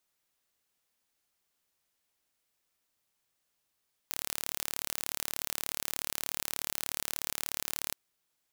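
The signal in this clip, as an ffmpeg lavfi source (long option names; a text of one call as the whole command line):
ffmpeg -f lavfi -i "aevalsrc='0.473*eq(mod(n,1202),0)':duration=3.82:sample_rate=44100" out.wav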